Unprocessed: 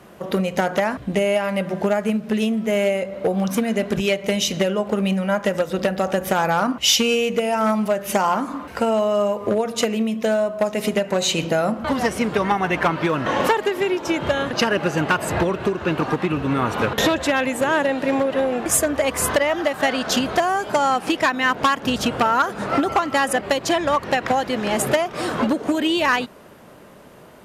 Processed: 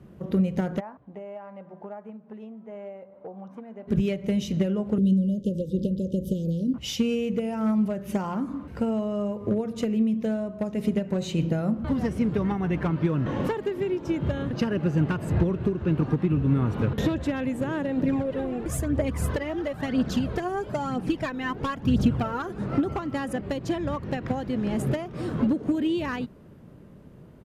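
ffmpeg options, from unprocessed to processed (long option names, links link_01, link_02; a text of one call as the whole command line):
ffmpeg -i in.wav -filter_complex "[0:a]asplit=3[link_01][link_02][link_03];[link_01]afade=type=out:start_time=0.79:duration=0.02[link_04];[link_02]bandpass=frequency=880:width_type=q:width=2.6,afade=type=in:start_time=0.79:duration=0.02,afade=type=out:start_time=3.87:duration=0.02[link_05];[link_03]afade=type=in:start_time=3.87:duration=0.02[link_06];[link_04][link_05][link_06]amix=inputs=3:normalize=0,asettb=1/sr,asplit=3[link_07][link_08][link_09];[link_07]atrim=end=4.984[link_10];[link_08]atrim=start=4.98:end=6.74,asetpts=PTS-STARTPTS,afade=type=in:duration=0.004:curve=qsin,afade=type=out:start_time=1.756:duration=0.004:curve=qsin,asuperstop=centerf=1300:order=20:qfactor=0.54[link_11];[link_09]atrim=start=6.736[link_12];[link_10][link_11]acrossfade=duration=0.004:curve1=hsin:curve2=qsin[link_13];[link_13][link_12]acrossfade=duration=0.004:curve1=qsin:curve2=hsin,asplit=3[link_14][link_15][link_16];[link_14]afade=type=out:start_time=17.96:duration=0.02[link_17];[link_15]aphaser=in_gain=1:out_gain=1:delay=3:decay=0.5:speed=1:type=triangular,afade=type=in:start_time=17.96:duration=0.02,afade=type=out:start_time=22.6:duration=0.02[link_18];[link_16]afade=type=in:start_time=22.6:duration=0.02[link_19];[link_17][link_18][link_19]amix=inputs=3:normalize=0,firequalizer=gain_entry='entry(140,0);entry(210,-5);entry(680,-19);entry(6800,-23)':delay=0.05:min_phase=1,volume=4.5dB" out.wav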